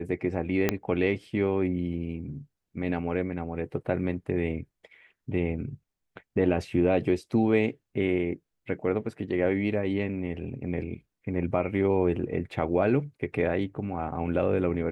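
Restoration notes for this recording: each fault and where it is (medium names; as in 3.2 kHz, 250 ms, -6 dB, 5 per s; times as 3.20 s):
0.69 s: pop -9 dBFS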